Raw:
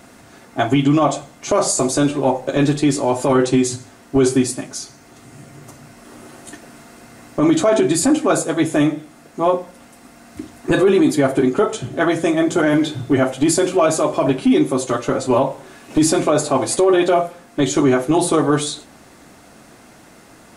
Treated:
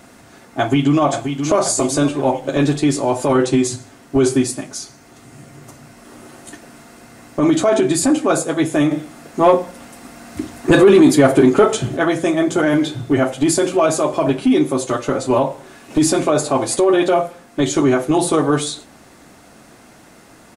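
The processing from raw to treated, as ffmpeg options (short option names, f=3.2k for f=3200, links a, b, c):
-filter_complex "[0:a]asplit=2[a][b];[b]afade=t=in:st=0.59:d=0.01,afade=t=out:st=1.02:d=0.01,aecho=0:1:530|1060|1590|2120|2650|3180:0.421697|0.210848|0.105424|0.0527121|0.026356|0.013178[c];[a][c]amix=inputs=2:normalize=0,asettb=1/sr,asplit=3[d][e][f];[d]atrim=end=8.914[g];[e]atrim=start=8.91:end=11.97,asetpts=PTS-STARTPTS,afade=t=in:d=0.004:c=qsin,afade=t=out:st=3.056:d=0.004:c=qsin,acontrast=52[h];[f]atrim=start=11.966[i];[g][h]acrossfade=d=0.004:c1=hsin:c2=qsin[j];[j][i]acrossfade=d=0.004:c1=qsin:c2=hsin"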